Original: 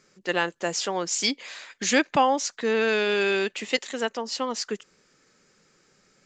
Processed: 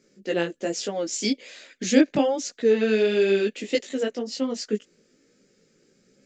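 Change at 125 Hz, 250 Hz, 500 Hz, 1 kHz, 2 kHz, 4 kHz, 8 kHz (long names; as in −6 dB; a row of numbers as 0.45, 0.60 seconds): +4.0, +6.0, +3.5, −9.0, −5.5, −3.5, −3.0 decibels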